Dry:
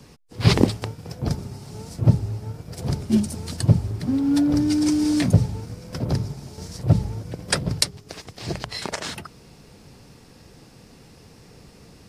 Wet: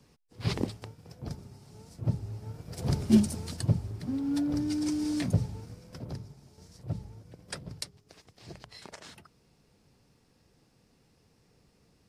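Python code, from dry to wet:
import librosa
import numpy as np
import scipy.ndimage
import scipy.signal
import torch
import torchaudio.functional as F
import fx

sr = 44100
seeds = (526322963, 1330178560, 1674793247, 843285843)

y = fx.gain(x, sr, db=fx.line((2.0, -14.0), (3.12, -1.0), (3.73, -10.0), (5.69, -10.0), (6.24, -17.5)))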